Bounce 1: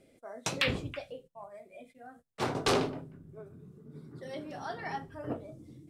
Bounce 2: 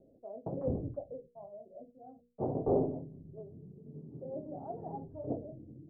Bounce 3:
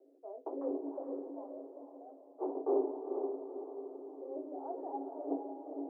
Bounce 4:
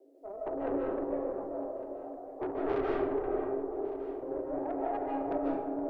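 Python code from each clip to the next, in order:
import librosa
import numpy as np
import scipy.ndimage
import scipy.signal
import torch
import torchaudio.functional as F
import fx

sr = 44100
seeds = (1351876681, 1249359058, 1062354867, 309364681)

y1 = scipy.signal.sosfilt(scipy.signal.butter(6, 720.0, 'lowpass', fs=sr, output='sos'), x)
y1 = fx.hum_notches(y1, sr, base_hz=60, count=8)
y1 = y1 * 10.0 ** (1.0 / 20.0)
y2 = scipy.signal.sosfilt(scipy.signal.cheby1(6, 9, 270.0, 'highpass', fs=sr, output='sos'), y1)
y2 = fx.echo_diffused(y2, sr, ms=466, feedback_pct=45, wet_db=-5)
y2 = fx.rider(y2, sr, range_db=4, speed_s=2.0)
y2 = y2 * 10.0 ** (2.5 / 20.0)
y3 = fx.tube_stage(y2, sr, drive_db=34.0, bias=0.4)
y3 = y3 + 10.0 ** (-18.0 / 20.0) * np.pad(y3, (int(1157 * sr / 1000.0), 0))[:len(y3)]
y3 = fx.rev_freeverb(y3, sr, rt60_s=0.81, hf_ratio=0.75, predelay_ms=110, drr_db=-3.0)
y3 = y3 * 10.0 ** (5.0 / 20.0)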